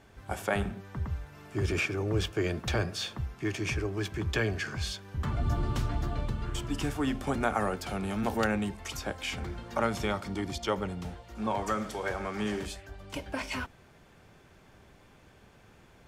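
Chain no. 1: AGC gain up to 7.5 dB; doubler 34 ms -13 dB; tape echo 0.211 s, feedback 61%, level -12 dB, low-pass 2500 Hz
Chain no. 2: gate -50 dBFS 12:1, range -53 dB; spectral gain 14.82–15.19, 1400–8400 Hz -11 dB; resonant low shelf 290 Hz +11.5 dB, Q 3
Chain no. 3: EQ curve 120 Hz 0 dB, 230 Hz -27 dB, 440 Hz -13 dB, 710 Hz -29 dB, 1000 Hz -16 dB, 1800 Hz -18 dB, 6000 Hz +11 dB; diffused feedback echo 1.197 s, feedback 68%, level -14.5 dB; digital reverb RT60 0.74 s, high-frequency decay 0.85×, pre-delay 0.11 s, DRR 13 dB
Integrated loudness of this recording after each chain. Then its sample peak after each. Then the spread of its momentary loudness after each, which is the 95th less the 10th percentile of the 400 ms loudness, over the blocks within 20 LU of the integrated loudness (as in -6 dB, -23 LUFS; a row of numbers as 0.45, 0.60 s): -25.0, -21.5, -35.0 LUFS; -5.5, -6.5, -13.0 dBFS; 8, 11, 18 LU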